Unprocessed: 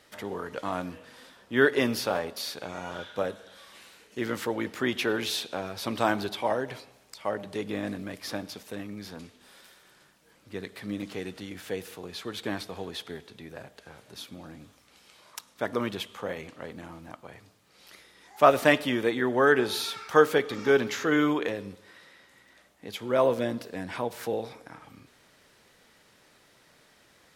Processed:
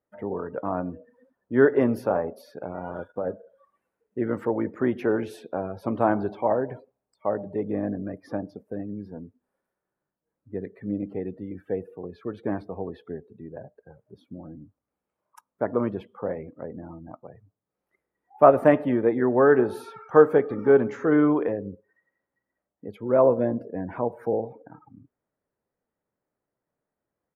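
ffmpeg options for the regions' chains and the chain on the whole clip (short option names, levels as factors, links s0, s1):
-filter_complex "[0:a]asettb=1/sr,asplit=3[s0][s1][s2];[s0]atrim=end=2.854[s3];[s1]atrim=start=2.85:end=3.27,asetpts=PTS-STARTPTS,afade=t=in:d=0.004:c=qsin,afade=t=out:st=0.416:d=0.004:c=qsin,acompressor=threshold=0.0355:ratio=4:attack=3.2:release=140:knee=1:detection=peak,acrusher=bits=6:mix=0:aa=0.5[s4];[s2]atrim=start=3.266[s5];[s3][s4]acrossfade=d=0.004:c1=hsin:c2=qsin[s6];[s6][s5]acrossfade=d=0.004:c1=qsin:c2=hsin,afftdn=nr=26:nf=-41,firequalizer=gain_entry='entry(620,0);entry(3600,-28);entry(10000,-13)':delay=0.05:min_phase=1,volume=1.78"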